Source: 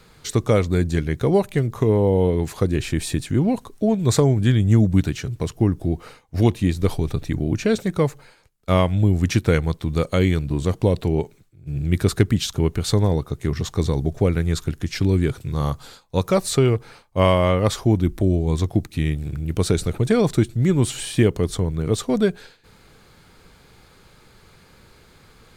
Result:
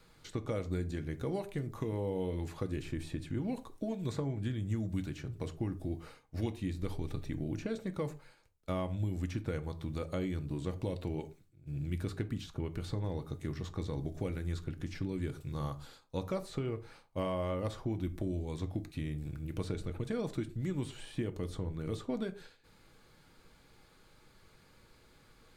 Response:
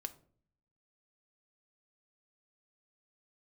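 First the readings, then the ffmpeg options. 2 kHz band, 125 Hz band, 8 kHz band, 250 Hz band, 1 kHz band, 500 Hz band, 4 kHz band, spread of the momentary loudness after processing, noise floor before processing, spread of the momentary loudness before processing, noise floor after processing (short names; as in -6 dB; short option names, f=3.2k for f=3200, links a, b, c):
-17.5 dB, -17.0 dB, -23.5 dB, -16.5 dB, -17.0 dB, -17.5 dB, -19.0 dB, 5 LU, -52 dBFS, 8 LU, -63 dBFS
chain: -filter_complex "[0:a]acrossover=split=1500|3900[a][b][c];[a]acompressor=threshold=-21dB:ratio=4[d];[b]acompressor=threshold=-42dB:ratio=4[e];[c]acompressor=threshold=-49dB:ratio=4[f];[d][e][f]amix=inputs=3:normalize=0[g];[1:a]atrim=start_sample=2205,afade=t=out:st=0.17:d=0.01,atrim=end_sample=7938[h];[g][h]afir=irnorm=-1:irlink=0,volume=-8.5dB"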